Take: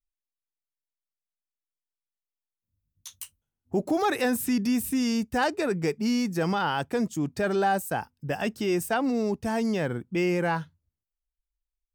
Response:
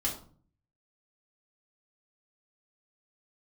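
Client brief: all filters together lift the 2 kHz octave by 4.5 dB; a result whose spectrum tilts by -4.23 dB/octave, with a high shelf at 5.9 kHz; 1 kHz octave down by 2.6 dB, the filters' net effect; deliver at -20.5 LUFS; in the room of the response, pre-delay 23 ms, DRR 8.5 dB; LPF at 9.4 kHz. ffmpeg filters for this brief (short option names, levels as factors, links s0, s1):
-filter_complex "[0:a]lowpass=9400,equalizer=f=1000:t=o:g=-5.5,equalizer=f=2000:t=o:g=7,highshelf=f=5900:g=9,asplit=2[s0][s1];[1:a]atrim=start_sample=2205,adelay=23[s2];[s1][s2]afir=irnorm=-1:irlink=0,volume=0.224[s3];[s0][s3]amix=inputs=2:normalize=0,volume=1.88"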